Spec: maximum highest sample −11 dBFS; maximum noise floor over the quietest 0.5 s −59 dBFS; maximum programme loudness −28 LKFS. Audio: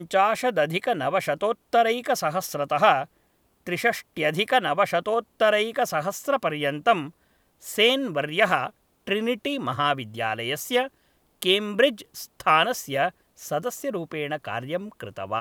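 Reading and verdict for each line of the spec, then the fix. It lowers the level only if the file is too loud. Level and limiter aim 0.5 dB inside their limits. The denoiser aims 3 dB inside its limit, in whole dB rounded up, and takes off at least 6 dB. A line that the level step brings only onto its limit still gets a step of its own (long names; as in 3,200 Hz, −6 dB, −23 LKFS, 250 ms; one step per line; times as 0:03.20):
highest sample −5.0 dBFS: out of spec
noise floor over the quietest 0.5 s −66 dBFS: in spec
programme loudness −24.5 LKFS: out of spec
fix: level −4 dB
brickwall limiter −11.5 dBFS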